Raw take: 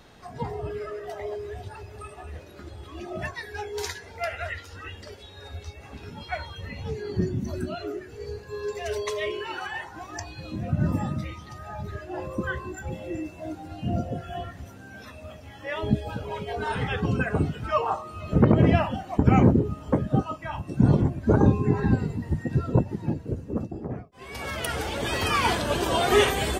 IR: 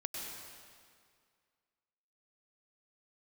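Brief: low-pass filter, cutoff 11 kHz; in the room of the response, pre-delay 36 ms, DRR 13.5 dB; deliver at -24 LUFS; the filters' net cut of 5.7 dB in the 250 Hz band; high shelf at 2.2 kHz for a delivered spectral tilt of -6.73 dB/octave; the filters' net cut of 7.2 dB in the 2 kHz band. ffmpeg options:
-filter_complex "[0:a]lowpass=11000,equalizer=f=250:t=o:g=-8,equalizer=f=2000:t=o:g=-4.5,highshelf=f=2200:g=-9,asplit=2[s0][s1];[1:a]atrim=start_sample=2205,adelay=36[s2];[s1][s2]afir=irnorm=-1:irlink=0,volume=0.188[s3];[s0][s3]amix=inputs=2:normalize=0,volume=2"

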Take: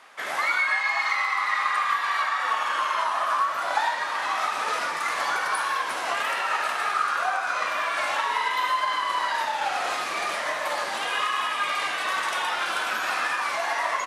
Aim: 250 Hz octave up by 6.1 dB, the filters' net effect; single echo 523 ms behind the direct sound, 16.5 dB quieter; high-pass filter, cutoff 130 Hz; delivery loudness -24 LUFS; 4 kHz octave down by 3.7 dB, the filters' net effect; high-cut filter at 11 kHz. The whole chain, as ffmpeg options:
-af "highpass=130,lowpass=11000,equalizer=f=250:t=o:g=8.5,equalizer=f=4000:t=o:g=-5,aecho=1:1:523:0.15,volume=1.19"

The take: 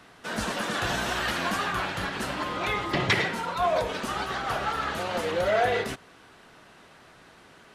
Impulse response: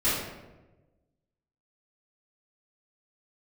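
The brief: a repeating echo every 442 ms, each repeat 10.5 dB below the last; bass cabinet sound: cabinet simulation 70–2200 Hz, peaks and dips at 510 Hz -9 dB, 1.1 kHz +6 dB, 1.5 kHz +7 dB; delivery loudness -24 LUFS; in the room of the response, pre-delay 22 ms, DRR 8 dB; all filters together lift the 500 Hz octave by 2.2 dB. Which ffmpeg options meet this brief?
-filter_complex "[0:a]equalizer=f=500:t=o:g=7.5,aecho=1:1:442|884|1326:0.299|0.0896|0.0269,asplit=2[s0][s1];[1:a]atrim=start_sample=2205,adelay=22[s2];[s1][s2]afir=irnorm=-1:irlink=0,volume=0.0944[s3];[s0][s3]amix=inputs=2:normalize=0,highpass=f=70:w=0.5412,highpass=f=70:w=1.3066,equalizer=f=510:t=q:w=4:g=-9,equalizer=f=1100:t=q:w=4:g=6,equalizer=f=1500:t=q:w=4:g=7,lowpass=f=2200:w=0.5412,lowpass=f=2200:w=1.3066,volume=0.944"

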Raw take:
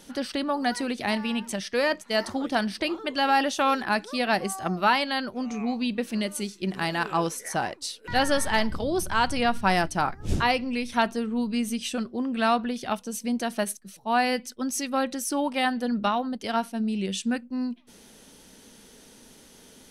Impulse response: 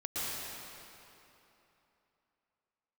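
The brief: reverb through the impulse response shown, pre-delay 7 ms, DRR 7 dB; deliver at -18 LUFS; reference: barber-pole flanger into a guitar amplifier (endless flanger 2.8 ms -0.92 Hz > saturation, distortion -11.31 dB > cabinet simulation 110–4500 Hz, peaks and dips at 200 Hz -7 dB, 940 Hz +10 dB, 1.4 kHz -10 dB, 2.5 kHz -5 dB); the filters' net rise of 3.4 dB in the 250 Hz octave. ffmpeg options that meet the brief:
-filter_complex "[0:a]equalizer=f=250:t=o:g=6.5,asplit=2[s0][s1];[1:a]atrim=start_sample=2205,adelay=7[s2];[s1][s2]afir=irnorm=-1:irlink=0,volume=0.237[s3];[s0][s3]amix=inputs=2:normalize=0,asplit=2[s4][s5];[s5]adelay=2.8,afreqshift=-0.92[s6];[s4][s6]amix=inputs=2:normalize=1,asoftclip=threshold=0.075,highpass=110,equalizer=f=200:t=q:w=4:g=-7,equalizer=f=940:t=q:w=4:g=10,equalizer=f=1400:t=q:w=4:g=-10,equalizer=f=2500:t=q:w=4:g=-5,lowpass=f=4500:w=0.5412,lowpass=f=4500:w=1.3066,volume=3.98"

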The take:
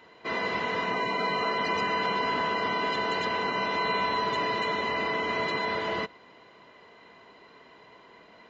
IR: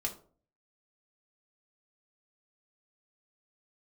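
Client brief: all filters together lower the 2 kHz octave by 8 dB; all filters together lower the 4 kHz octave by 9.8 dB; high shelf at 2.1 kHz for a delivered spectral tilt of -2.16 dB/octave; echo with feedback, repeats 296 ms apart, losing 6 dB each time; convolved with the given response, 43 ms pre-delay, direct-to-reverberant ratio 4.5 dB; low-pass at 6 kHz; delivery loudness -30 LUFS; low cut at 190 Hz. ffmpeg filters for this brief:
-filter_complex "[0:a]highpass=190,lowpass=6000,equalizer=f=2000:t=o:g=-4.5,highshelf=f=2100:g=-7.5,equalizer=f=4000:t=o:g=-3.5,aecho=1:1:296|592|888|1184|1480|1776:0.501|0.251|0.125|0.0626|0.0313|0.0157,asplit=2[s0][s1];[1:a]atrim=start_sample=2205,adelay=43[s2];[s1][s2]afir=irnorm=-1:irlink=0,volume=0.473[s3];[s0][s3]amix=inputs=2:normalize=0,volume=0.944"

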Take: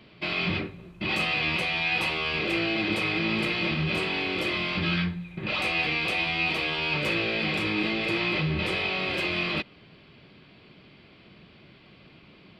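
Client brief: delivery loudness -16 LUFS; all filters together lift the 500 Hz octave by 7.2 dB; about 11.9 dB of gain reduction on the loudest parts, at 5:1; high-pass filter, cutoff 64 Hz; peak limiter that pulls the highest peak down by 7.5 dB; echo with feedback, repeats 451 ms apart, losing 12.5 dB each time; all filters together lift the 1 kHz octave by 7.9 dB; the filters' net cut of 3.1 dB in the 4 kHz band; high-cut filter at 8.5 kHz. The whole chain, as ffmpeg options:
-af "highpass=64,lowpass=8500,equalizer=f=500:t=o:g=7.5,equalizer=f=1000:t=o:g=8,equalizer=f=4000:t=o:g=-5,acompressor=threshold=0.02:ratio=5,alimiter=level_in=1.88:limit=0.0631:level=0:latency=1,volume=0.531,aecho=1:1:451|902|1353:0.237|0.0569|0.0137,volume=12.6"

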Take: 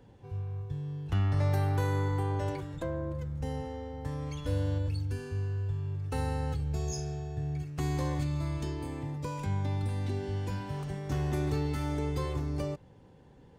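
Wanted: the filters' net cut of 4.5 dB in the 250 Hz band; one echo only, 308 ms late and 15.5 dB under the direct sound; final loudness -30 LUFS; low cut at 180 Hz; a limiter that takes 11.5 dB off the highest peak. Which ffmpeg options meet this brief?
-af "highpass=180,equalizer=f=250:t=o:g=-4,alimiter=level_in=3.55:limit=0.0631:level=0:latency=1,volume=0.282,aecho=1:1:308:0.168,volume=4.73"

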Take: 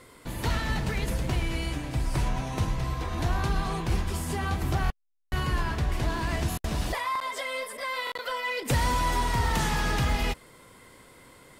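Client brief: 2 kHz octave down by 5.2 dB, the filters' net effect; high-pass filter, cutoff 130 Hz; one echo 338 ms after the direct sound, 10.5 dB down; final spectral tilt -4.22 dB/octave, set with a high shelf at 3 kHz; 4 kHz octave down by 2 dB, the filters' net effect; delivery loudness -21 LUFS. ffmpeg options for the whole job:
-af "highpass=130,equalizer=f=2000:t=o:g=-7.5,highshelf=f=3000:g=7,equalizer=f=4000:t=o:g=-5.5,aecho=1:1:338:0.299,volume=3.35"

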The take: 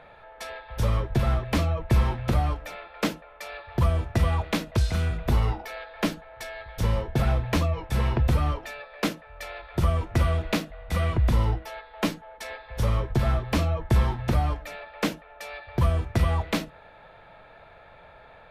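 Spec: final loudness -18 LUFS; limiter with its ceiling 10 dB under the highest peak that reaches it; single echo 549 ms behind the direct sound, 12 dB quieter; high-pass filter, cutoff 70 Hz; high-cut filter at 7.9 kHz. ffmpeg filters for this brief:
-af "highpass=70,lowpass=7900,alimiter=limit=0.0841:level=0:latency=1,aecho=1:1:549:0.251,volume=5.62"

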